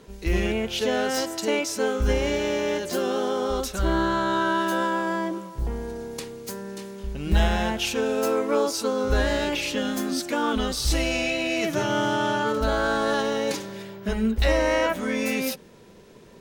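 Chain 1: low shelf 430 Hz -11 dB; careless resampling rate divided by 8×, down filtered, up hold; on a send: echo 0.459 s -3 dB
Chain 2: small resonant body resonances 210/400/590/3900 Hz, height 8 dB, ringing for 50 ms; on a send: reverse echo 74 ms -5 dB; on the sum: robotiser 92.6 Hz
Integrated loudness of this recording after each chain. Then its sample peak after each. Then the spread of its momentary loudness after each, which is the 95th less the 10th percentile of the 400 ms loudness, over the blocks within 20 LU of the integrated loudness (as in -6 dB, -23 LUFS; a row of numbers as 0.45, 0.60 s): -27.5, -24.5 LUFS; -12.5, -3.5 dBFS; 10, 11 LU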